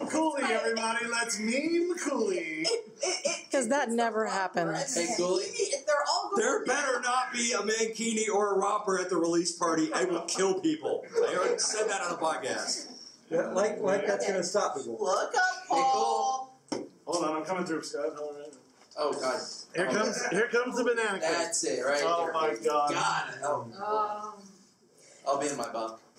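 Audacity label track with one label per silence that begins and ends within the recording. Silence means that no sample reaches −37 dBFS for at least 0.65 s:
24.330000	25.270000	silence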